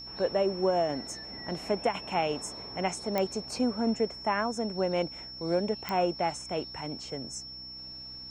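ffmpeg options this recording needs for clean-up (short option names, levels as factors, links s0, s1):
-af "adeclick=t=4,bandreject=f=63.5:t=h:w=4,bandreject=f=127:t=h:w=4,bandreject=f=190.5:t=h:w=4,bandreject=f=254:t=h:w=4,bandreject=f=317.5:t=h:w=4,bandreject=f=5400:w=30"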